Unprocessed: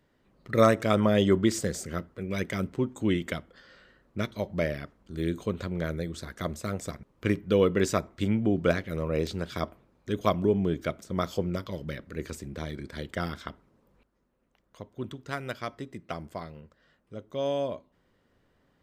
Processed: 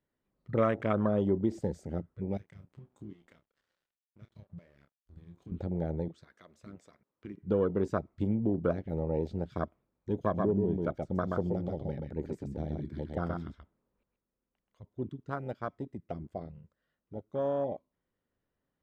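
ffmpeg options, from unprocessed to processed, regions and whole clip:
-filter_complex "[0:a]asettb=1/sr,asplit=3[s0][s1][s2];[s0]atrim=end=2.374[s3];[s1]atrim=start=2.37:end=5.52,asetpts=PTS-STARTPTS,afade=t=in:d=0.004:c=qsin,afade=t=out:st=3.146:d=0.004:c=qsin,acompressor=threshold=0.0112:ratio=6:attack=3.2:release=140:knee=1:detection=peak,aeval=exprs='sgn(val(0))*max(abs(val(0))-0.00237,0)':c=same,asplit=2[s4][s5];[s5]adelay=29,volume=0.376[s6];[s4][s6]amix=inputs=2:normalize=0,atrim=end_sample=138915[s7];[s2]atrim=start=5.516[s8];[s3][s7]acrossfade=d=0.004:c1=hsin:c2=qsin[s9];[s9][s8]acrossfade=d=0.004:c1=qsin:c2=hsin,asettb=1/sr,asplit=3[s10][s11][s12];[s10]atrim=end=6.084[s13];[s11]atrim=start=6.08:end=7.43,asetpts=PTS-STARTPTS,afade=t=in:d=0.004:c=qsin,afade=t=out:st=1.346:d=0.004:c=qsin,highshelf=f=11000:g=-11.5,acompressor=threshold=0.0316:ratio=4:attack=3.2:release=140:knee=1:detection=peak,highpass=f=430:p=1[s14];[s12]atrim=start=7.426[s15];[s13][s14]acrossfade=d=0.004:c1=hsin:c2=qsin[s16];[s16][s15]acrossfade=d=0.004:c1=qsin:c2=hsin,asettb=1/sr,asplit=3[s17][s18][s19];[s17]atrim=end=10.224[s20];[s18]atrim=start=10.22:end=14.86,asetpts=PTS-STARTPTS,afade=t=in:d=0.004:c=qsin,afade=t=out:st=4.636:d=0.004:c=qsin,deesser=0.85,aecho=1:1:129:0.631,atrim=end_sample=204624[s21];[s19]atrim=start=14.856[s22];[s20][s21]acrossfade=d=0.004:c1=hsin:c2=qsin[s23];[s23][s22]acrossfade=d=0.004:c1=qsin:c2=hsin,afwtdn=0.0282,lowpass=f=4000:p=1,acompressor=threshold=0.0398:ratio=2"

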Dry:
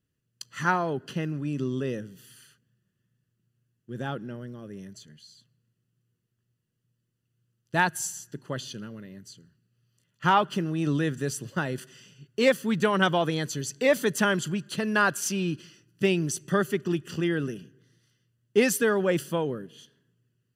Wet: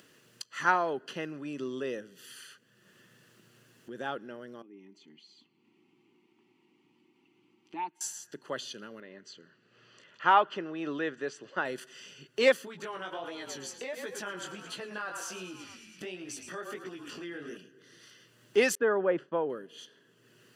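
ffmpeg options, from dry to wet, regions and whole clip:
-filter_complex "[0:a]asettb=1/sr,asplit=3[s0][s1][s2];[s0]atrim=end=4.624[s3];[s1]atrim=start=4.62:end=8.01,asetpts=PTS-STARTPTS,afade=t=in:d=0.004:c=qsin,afade=t=out:st=3.386:d=0.004:c=qsin,asplit=3[s4][s5][s6];[s4]bandpass=f=300:t=q:w=8,volume=1[s7];[s5]bandpass=f=870:t=q:w=8,volume=0.501[s8];[s6]bandpass=f=2240:t=q:w=8,volume=0.355[s9];[s7][s8][s9]amix=inputs=3:normalize=0,aecho=1:1:5.2:0.37,atrim=end_sample=149499[s10];[s2]atrim=start=8.006[s11];[s3][s10]acrossfade=d=0.004:c1=hsin:c2=qsin[s12];[s12][s11]acrossfade=d=0.004:c1=qsin:c2=hsin,asettb=1/sr,asplit=3[s13][s14][s15];[s13]atrim=end=9.004[s16];[s14]atrim=start=9:end=11.65,asetpts=PTS-STARTPTS,afade=t=in:d=0.004:c=qsin,afade=t=out:st=2.646:d=0.004:c=qsin,lowpass=f=7500:w=0.5412,lowpass=f=7500:w=1.3066,bass=f=250:g=-6,treble=f=4000:g=-12[s17];[s15]atrim=start=11.646[s18];[s16][s17]acrossfade=d=0.004:c1=hsin:c2=qsin[s19];[s19][s18]acrossfade=d=0.004:c1=qsin:c2=hsin,asettb=1/sr,asplit=3[s20][s21][s22];[s20]atrim=end=12.654[s23];[s21]atrim=start=12.65:end=17.57,asetpts=PTS-STARTPTS,afade=t=in:d=0.004:c=qsin,afade=t=out:st=4.916:d=0.004:c=qsin,asplit=7[s24][s25][s26][s27][s28][s29][s30];[s25]adelay=110,afreqshift=-35,volume=0.224[s31];[s26]adelay=220,afreqshift=-70,volume=0.13[s32];[s27]adelay=330,afreqshift=-105,volume=0.075[s33];[s28]adelay=440,afreqshift=-140,volume=0.0437[s34];[s29]adelay=550,afreqshift=-175,volume=0.0254[s35];[s30]adelay=660,afreqshift=-210,volume=0.0146[s36];[s24][s31][s32][s33][s34][s35][s36]amix=inputs=7:normalize=0,atrim=end_sample=216972,acompressor=threshold=0.0398:ratio=16:attack=3.2:release=140:knee=1:detection=peak,flanger=delay=15.5:depth=7.2:speed=1.4[s37];[s22]atrim=start=17.566[s38];[s23][s37]acrossfade=d=0.004:c1=hsin:c2=qsin[s39];[s39][s38]acrossfade=d=0.004:c1=qsin:c2=hsin,asettb=1/sr,asplit=3[s40][s41][s42];[s40]atrim=end=18.754[s43];[s41]atrim=start=18.75:end=19.5,asetpts=PTS-STARTPTS,afade=t=in:d=0.004:c=qsin,afade=t=out:st=0.746:d=0.004:c=qsin,lowpass=1400,agate=range=0.0224:threshold=0.00794:ratio=3:release=100:detection=peak[s44];[s42]atrim=start=19.496[s45];[s43][s44]acrossfade=d=0.004:c1=hsin:c2=qsin[s46];[s46][s45]acrossfade=d=0.004:c1=qsin:c2=hsin,highpass=400,highshelf=f=9000:g=-11,acompressor=mode=upward:threshold=0.0112:ratio=2.5"

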